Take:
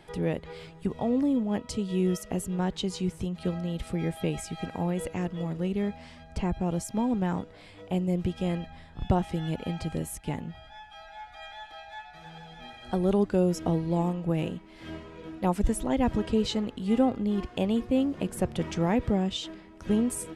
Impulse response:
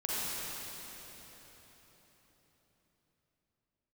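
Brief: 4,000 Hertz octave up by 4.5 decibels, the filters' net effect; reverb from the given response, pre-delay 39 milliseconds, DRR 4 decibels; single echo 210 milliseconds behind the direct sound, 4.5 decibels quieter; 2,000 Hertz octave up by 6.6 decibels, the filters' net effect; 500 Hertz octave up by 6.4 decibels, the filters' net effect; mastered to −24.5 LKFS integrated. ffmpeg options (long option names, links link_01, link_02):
-filter_complex "[0:a]equalizer=frequency=500:width_type=o:gain=7.5,equalizer=frequency=2000:width_type=o:gain=7,equalizer=frequency=4000:width_type=o:gain=3,aecho=1:1:210:0.596,asplit=2[link_01][link_02];[1:a]atrim=start_sample=2205,adelay=39[link_03];[link_02][link_03]afir=irnorm=-1:irlink=0,volume=-11dB[link_04];[link_01][link_04]amix=inputs=2:normalize=0,volume=-1dB"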